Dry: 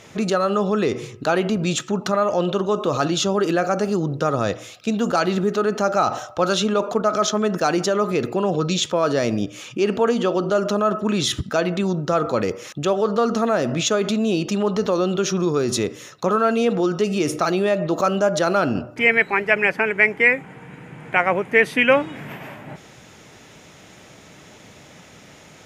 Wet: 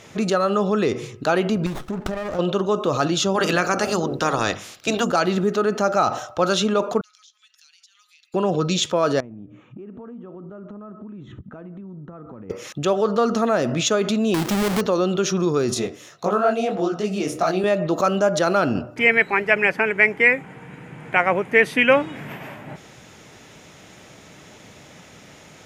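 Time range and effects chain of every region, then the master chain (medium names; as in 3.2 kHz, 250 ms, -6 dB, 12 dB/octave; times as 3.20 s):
1.66–2.39 s: compression 10:1, threshold -22 dBFS + sliding maximum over 17 samples
3.34–5.03 s: spectral peaks clipped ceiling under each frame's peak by 16 dB + hum notches 50/100/150/200/250 Hz
7.01–8.34 s: inverse Chebyshev high-pass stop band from 550 Hz, stop band 80 dB + tilt EQ -4.5 dB/octave + compression 5:1, threshold -50 dBFS
9.20–12.50 s: FFT filter 260 Hz 0 dB, 560 Hz -11 dB, 1.1 kHz -8 dB, 2 kHz -14 dB, 7.9 kHz -26 dB + compression 16:1, threshold -34 dBFS + boxcar filter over 9 samples
14.34–14.81 s: square wave that keeps the level + compression 2.5:1, threshold -20 dBFS
15.74–17.64 s: peaking EQ 700 Hz +10.5 dB 0.22 oct + detune thickener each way 59 cents
whole clip: none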